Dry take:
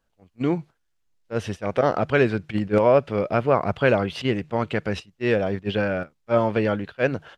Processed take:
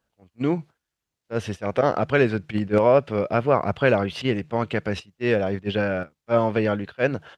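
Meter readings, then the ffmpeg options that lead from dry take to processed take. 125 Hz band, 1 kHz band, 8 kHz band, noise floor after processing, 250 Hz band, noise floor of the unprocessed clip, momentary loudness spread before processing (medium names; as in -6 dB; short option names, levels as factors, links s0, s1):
0.0 dB, 0.0 dB, no reading, -84 dBFS, 0.0 dB, -71 dBFS, 8 LU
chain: -af "highpass=49"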